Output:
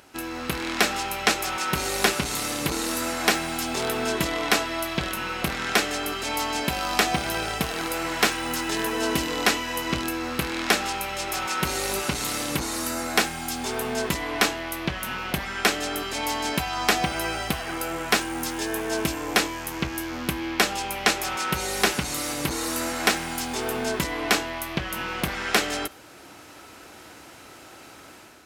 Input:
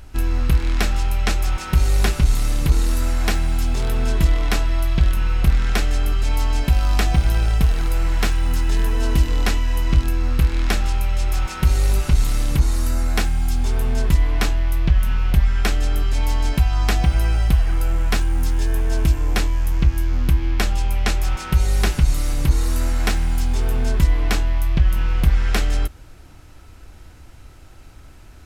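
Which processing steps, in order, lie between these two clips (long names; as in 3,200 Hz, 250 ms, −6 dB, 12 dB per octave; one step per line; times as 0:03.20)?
on a send at −23.5 dB: convolution reverb RT60 0.40 s, pre-delay 52 ms
on the sum: automatic gain control gain up to 7.5 dB
high-pass filter 300 Hz 12 dB per octave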